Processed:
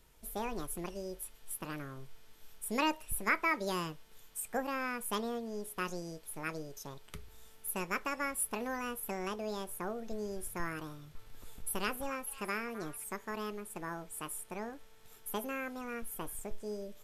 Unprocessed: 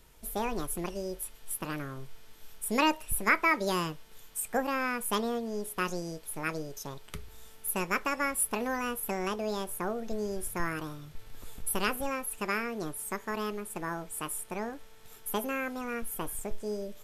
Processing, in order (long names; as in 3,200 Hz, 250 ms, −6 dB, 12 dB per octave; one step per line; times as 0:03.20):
0:10.89–0:13.04: echo through a band-pass that steps 258 ms, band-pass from 1,300 Hz, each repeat 1.4 octaves, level −11.5 dB
level −5.5 dB